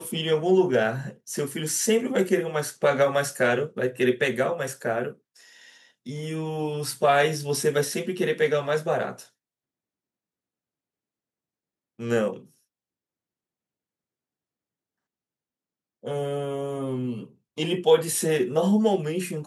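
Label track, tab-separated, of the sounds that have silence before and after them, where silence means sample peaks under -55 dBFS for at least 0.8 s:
11.990000	12.570000	sound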